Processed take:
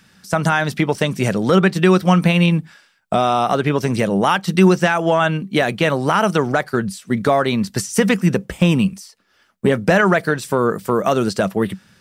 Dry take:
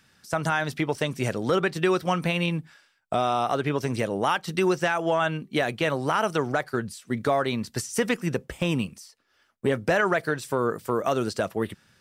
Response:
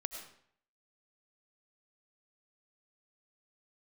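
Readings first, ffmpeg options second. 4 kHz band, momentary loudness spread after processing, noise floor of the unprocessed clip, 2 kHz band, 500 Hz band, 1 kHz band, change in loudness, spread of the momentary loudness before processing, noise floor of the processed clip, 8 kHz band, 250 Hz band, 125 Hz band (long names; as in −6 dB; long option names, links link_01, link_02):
+7.5 dB, 7 LU, −67 dBFS, +7.5 dB, +7.5 dB, +7.5 dB, +9.0 dB, 7 LU, −58 dBFS, +7.5 dB, +11.0 dB, +11.5 dB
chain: -af "equalizer=frequency=190:width_type=o:width=0.26:gain=12,volume=7.5dB"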